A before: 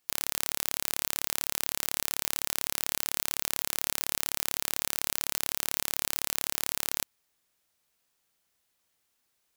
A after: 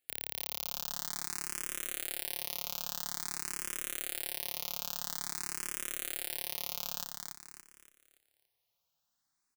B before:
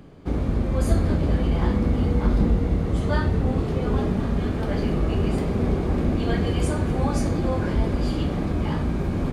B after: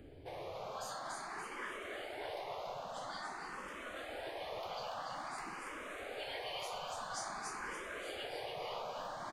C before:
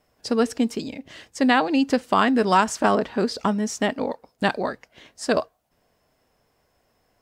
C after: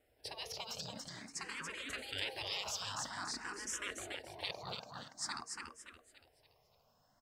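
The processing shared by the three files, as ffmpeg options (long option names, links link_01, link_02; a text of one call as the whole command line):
ffmpeg -i in.wav -filter_complex "[0:a]afftfilt=real='re*lt(hypot(re,im),0.112)':imag='im*lt(hypot(re,im),0.112)':win_size=1024:overlap=0.75,aecho=1:1:285|570|855|1140|1425:0.631|0.24|0.0911|0.0346|0.0132,asplit=2[link_01][link_02];[link_02]afreqshift=0.49[link_03];[link_01][link_03]amix=inputs=2:normalize=1,volume=-5dB" out.wav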